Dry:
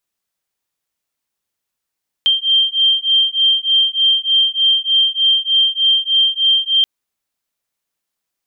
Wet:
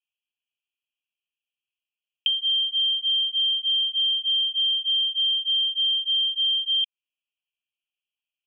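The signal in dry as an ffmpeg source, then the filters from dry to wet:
-f lavfi -i "aevalsrc='0.188*(sin(2*PI*3160*t)+sin(2*PI*3163.3*t))':d=4.58:s=44100"
-af "asuperpass=centerf=2800:order=12:qfactor=3,acompressor=threshold=0.0794:ratio=6"

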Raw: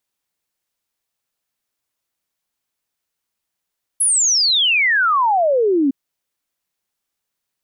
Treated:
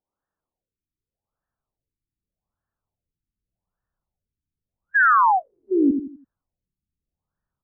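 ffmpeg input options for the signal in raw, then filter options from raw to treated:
-f lavfi -i "aevalsrc='0.237*clip(min(t,1.91-t)/0.01,0,1)*sin(2*PI*11000*1.91/log(260/11000)*(exp(log(260/11000)*t/1.91)-1))':d=1.91:s=44100"
-filter_complex "[0:a]asubboost=boost=6.5:cutoff=140,asplit=2[s0][s1];[s1]aecho=0:1:84|168|252|336:0.473|0.166|0.058|0.0203[s2];[s0][s2]amix=inputs=2:normalize=0,afftfilt=real='re*lt(b*sr/1024,370*pow(1900/370,0.5+0.5*sin(2*PI*0.84*pts/sr)))':imag='im*lt(b*sr/1024,370*pow(1900/370,0.5+0.5*sin(2*PI*0.84*pts/sr)))':win_size=1024:overlap=0.75"

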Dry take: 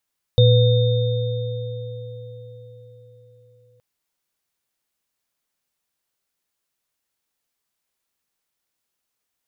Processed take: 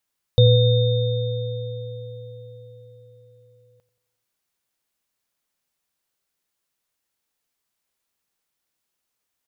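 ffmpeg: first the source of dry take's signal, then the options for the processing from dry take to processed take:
-f lavfi -i "aevalsrc='0.316*pow(10,-3*t/4.41)*sin(2*PI*116*t)+0.178*pow(10,-3*t/4.98)*sin(2*PI*497*t)+0.0841*pow(10,-3*t/3.02)*sin(2*PI*3650*t)':d=3.42:s=44100"
-filter_complex "[0:a]asplit=2[s0][s1];[s1]adelay=89,lowpass=f=2000:p=1,volume=0.2,asplit=2[s2][s3];[s3]adelay=89,lowpass=f=2000:p=1,volume=0.54,asplit=2[s4][s5];[s5]adelay=89,lowpass=f=2000:p=1,volume=0.54,asplit=2[s6][s7];[s7]adelay=89,lowpass=f=2000:p=1,volume=0.54,asplit=2[s8][s9];[s9]adelay=89,lowpass=f=2000:p=1,volume=0.54[s10];[s0][s2][s4][s6][s8][s10]amix=inputs=6:normalize=0"

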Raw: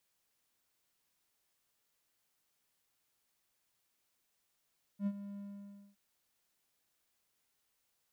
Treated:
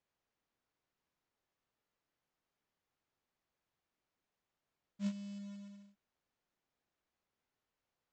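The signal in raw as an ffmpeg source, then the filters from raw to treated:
-f lavfi -i "aevalsrc='0.0422*(1-4*abs(mod(201*t+0.25,1)-0.5))':d=0.969:s=44100,afade=t=in:d=0.076,afade=t=out:st=0.076:d=0.055:silence=0.224,afade=t=out:st=0.39:d=0.579"
-af "lowpass=f=1200:p=1,aresample=16000,acrusher=bits=4:mode=log:mix=0:aa=0.000001,aresample=44100"

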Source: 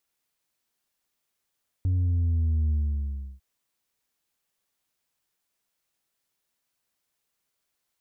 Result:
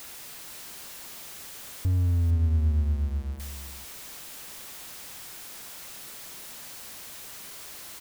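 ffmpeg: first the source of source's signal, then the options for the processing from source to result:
-f lavfi -i "aevalsrc='0.0841*clip((1.55-t)/0.69,0,1)*tanh(1.41*sin(2*PI*93*1.55/log(65/93)*(exp(log(65/93)*t/1.55)-1)))/tanh(1.41)':d=1.55:s=44100"
-filter_complex "[0:a]aeval=exprs='val(0)+0.5*0.015*sgn(val(0))':c=same,asplit=2[s0][s1];[s1]aecho=0:1:456:0.282[s2];[s0][s2]amix=inputs=2:normalize=0"

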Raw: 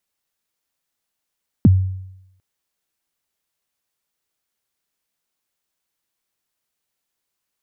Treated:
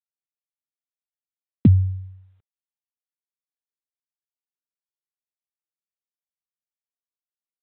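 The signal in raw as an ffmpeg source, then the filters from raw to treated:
-f lavfi -i "aevalsrc='0.562*pow(10,-3*t/0.84)*sin(2*PI*(290*0.028/log(94/290)*(exp(log(94/290)*min(t,0.028)/0.028)-1)+94*max(t-0.028,0)))':d=0.75:s=44100"
-filter_complex "[0:a]highpass=f=56:w=0.5412,highpass=f=56:w=1.3066,acrossover=split=510[s0][s1];[s1]alimiter=level_in=1.78:limit=0.0631:level=0:latency=1:release=63,volume=0.562[s2];[s0][s2]amix=inputs=2:normalize=0" -ar 8000 -c:a adpcm_g726 -b:a 40k

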